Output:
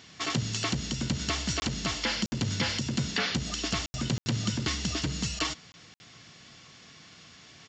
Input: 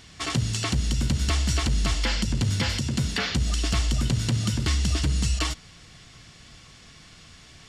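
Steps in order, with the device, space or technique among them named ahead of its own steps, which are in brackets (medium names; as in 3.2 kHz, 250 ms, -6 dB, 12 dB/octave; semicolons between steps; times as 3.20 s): call with lost packets (high-pass 140 Hz 12 dB/octave; resampled via 16 kHz; lost packets bursts); trim -1.5 dB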